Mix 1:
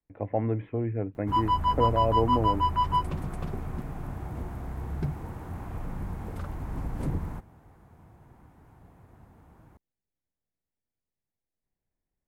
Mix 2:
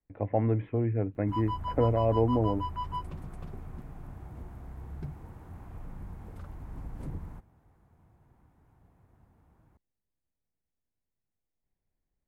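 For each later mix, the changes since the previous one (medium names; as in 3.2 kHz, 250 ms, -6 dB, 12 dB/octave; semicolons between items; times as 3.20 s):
background -10.5 dB; master: add bass shelf 110 Hz +4.5 dB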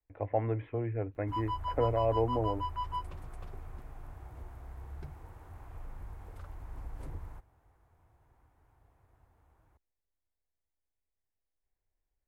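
master: add peaking EQ 190 Hz -15 dB 1.2 oct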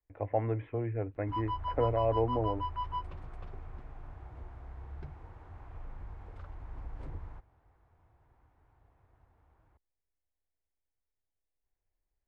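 master: add low-pass 3.9 kHz 12 dB/octave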